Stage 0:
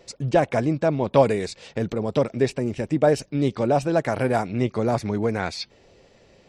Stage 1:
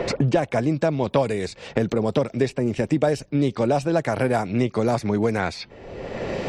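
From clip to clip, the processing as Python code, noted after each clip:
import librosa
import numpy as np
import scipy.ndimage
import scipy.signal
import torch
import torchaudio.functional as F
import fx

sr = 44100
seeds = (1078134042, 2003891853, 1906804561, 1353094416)

y = fx.band_squash(x, sr, depth_pct=100)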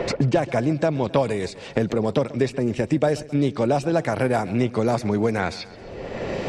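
y = fx.echo_feedback(x, sr, ms=133, feedback_pct=58, wet_db=-19)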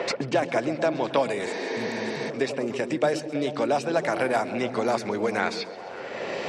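y = fx.weighting(x, sr, curve='A')
y = fx.echo_stepped(y, sr, ms=109, hz=160.0, octaves=0.7, feedback_pct=70, wet_db=-2.5)
y = fx.spec_repair(y, sr, seeds[0], start_s=1.49, length_s=0.78, low_hz=250.0, high_hz=6600.0, source='before')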